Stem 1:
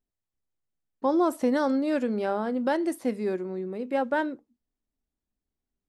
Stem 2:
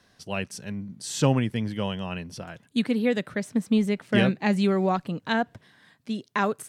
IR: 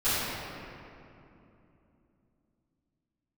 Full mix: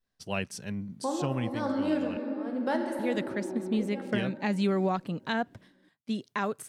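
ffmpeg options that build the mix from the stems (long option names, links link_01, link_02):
-filter_complex "[0:a]tremolo=f=1.1:d=0.94,volume=-4.5dB,asplit=3[link_01][link_02][link_03];[link_02]volume=-14dB[link_04];[1:a]agate=range=-33dB:threshold=-47dB:ratio=3:detection=peak,volume=-1.5dB,asplit=3[link_05][link_06][link_07];[link_05]atrim=end=2.17,asetpts=PTS-STARTPTS,afade=type=out:start_time=2.166:duration=0.004:curve=hsin[link_08];[link_06]atrim=start=2.17:end=2.99,asetpts=PTS-STARTPTS,volume=0[link_09];[link_07]atrim=start=2.99,asetpts=PTS-STARTPTS,afade=type=in:duration=0.004:curve=hsin[link_10];[link_08][link_09][link_10]concat=n=3:v=0:a=1[link_11];[link_03]apad=whole_len=294874[link_12];[link_11][link_12]sidechaincompress=threshold=-43dB:ratio=3:attack=16:release=390[link_13];[2:a]atrim=start_sample=2205[link_14];[link_04][link_14]afir=irnorm=-1:irlink=0[link_15];[link_01][link_13][link_15]amix=inputs=3:normalize=0,alimiter=limit=-17.5dB:level=0:latency=1:release=342"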